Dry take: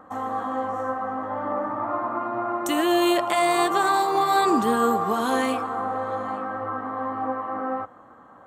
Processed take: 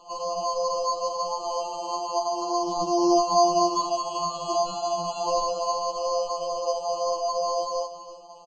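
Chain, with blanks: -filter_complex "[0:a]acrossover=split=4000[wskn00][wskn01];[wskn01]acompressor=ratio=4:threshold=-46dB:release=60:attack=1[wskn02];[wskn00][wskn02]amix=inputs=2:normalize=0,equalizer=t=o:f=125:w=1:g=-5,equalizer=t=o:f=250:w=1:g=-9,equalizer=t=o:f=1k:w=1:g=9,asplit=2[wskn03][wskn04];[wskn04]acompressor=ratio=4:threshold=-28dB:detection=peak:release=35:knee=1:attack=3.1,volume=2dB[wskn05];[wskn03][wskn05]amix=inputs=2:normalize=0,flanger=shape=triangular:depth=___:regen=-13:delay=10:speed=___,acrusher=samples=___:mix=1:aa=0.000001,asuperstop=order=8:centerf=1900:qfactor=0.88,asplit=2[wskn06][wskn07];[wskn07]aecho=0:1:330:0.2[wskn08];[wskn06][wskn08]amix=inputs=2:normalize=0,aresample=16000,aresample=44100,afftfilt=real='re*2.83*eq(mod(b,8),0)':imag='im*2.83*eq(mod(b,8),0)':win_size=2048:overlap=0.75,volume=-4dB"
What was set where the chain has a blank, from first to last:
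5.7, 0.44, 24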